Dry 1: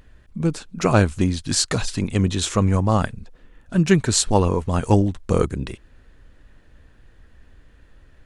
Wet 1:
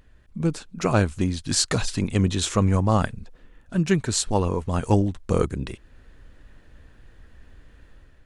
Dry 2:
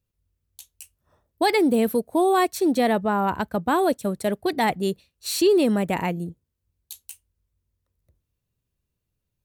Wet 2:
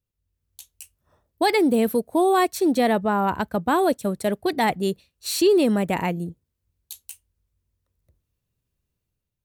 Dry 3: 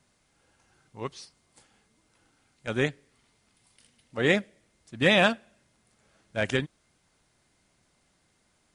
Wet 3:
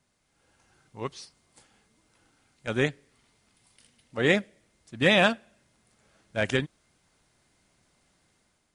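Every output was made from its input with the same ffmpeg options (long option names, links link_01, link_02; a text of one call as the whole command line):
ffmpeg -i in.wav -af "dynaudnorm=framelen=110:gausssize=7:maxgain=6dB,volume=-5dB" out.wav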